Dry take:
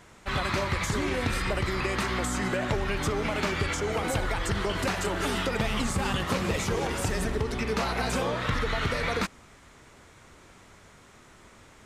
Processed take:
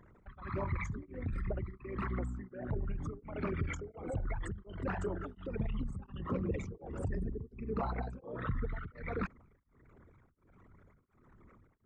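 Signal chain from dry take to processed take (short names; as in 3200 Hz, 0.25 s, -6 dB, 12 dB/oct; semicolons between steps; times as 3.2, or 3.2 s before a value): formant sharpening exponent 3; beating tremolo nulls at 1.4 Hz; gain -6 dB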